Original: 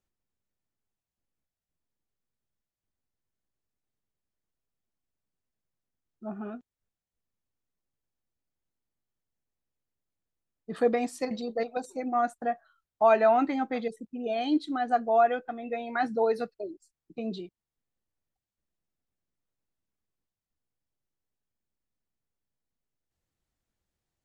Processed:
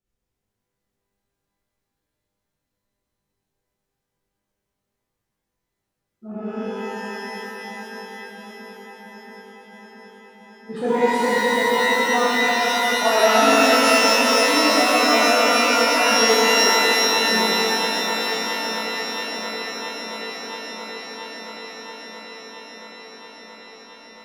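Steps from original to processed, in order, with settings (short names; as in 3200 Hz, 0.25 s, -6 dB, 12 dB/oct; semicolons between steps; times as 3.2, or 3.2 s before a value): rotary speaker horn 7.5 Hz; darkening echo 0.676 s, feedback 79%, low-pass 2300 Hz, level -10 dB; shimmer reverb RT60 3.6 s, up +12 st, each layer -2 dB, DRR -10.5 dB; gain -1 dB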